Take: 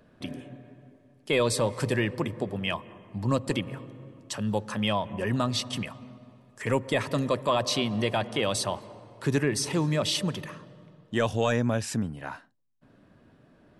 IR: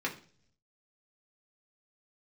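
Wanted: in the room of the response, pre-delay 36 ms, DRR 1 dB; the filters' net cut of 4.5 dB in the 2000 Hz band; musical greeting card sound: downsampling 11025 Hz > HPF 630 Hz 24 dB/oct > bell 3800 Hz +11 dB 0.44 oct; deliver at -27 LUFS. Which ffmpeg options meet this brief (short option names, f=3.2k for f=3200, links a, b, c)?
-filter_complex "[0:a]equalizer=f=2k:t=o:g=-7,asplit=2[a][b];[1:a]atrim=start_sample=2205,adelay=36[c];[b][c]afir=irnorm=-1:irlink=0,volume=-7dB[d];[a][d]amix=inputs=2:normalize=0,aresample=11025,aresample=44100,highpass=f=630:w=0.5412,highpass=f=630:w=1.3066,equalizer=f=3.8k:t=o:w=0.44:g=11,volume=2.5dB"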